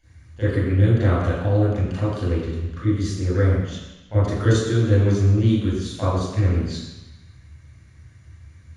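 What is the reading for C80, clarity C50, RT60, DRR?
1.0 dB, -3.0 dB, 1.0 s, -12.5 dB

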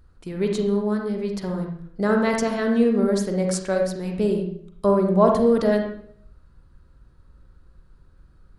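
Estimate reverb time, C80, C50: 0.60 s, 7.5 dB, 4.0 dB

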